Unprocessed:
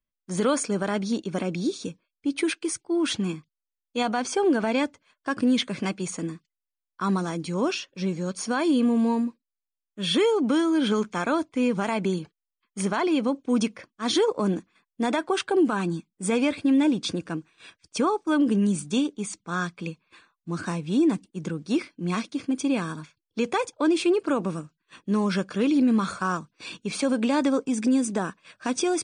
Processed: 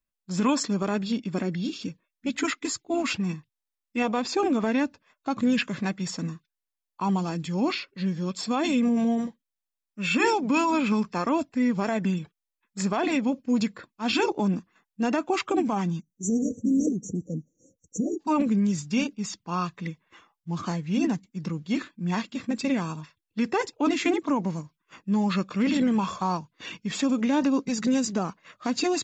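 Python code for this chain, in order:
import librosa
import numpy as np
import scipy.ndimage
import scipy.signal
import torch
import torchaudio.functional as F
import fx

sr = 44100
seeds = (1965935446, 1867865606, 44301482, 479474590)

y = fx.spec_erase(x, sr, start_s=16.0, length_s=2.2, low_hz=760.0, high_hz=5700.0)
y = fx.formant_shift(y, sr, semitones=-4)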